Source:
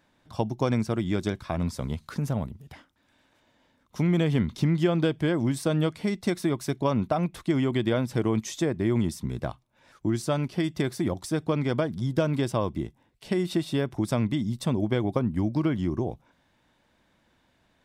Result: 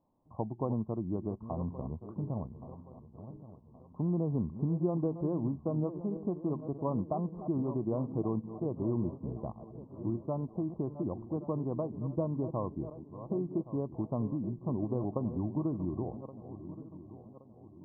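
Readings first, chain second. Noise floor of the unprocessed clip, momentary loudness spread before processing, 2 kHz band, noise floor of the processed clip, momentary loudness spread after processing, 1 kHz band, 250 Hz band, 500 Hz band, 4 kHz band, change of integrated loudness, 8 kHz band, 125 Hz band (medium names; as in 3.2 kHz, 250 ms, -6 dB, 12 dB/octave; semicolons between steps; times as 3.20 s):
-68 dBFS, 7 LU, under -40 dB, -56 dBFS, 16 LU, -8.5 dB, -7.0 dB, -7.5 dB, under -40 dB, -8.0 dB, under -35 dB, -7.5 dB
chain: backward echo that repeats 561 ms, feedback 61%, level -11.5 dB; Chebyshev low-pass 1.1 kHz, order 6; trim -7.5 dB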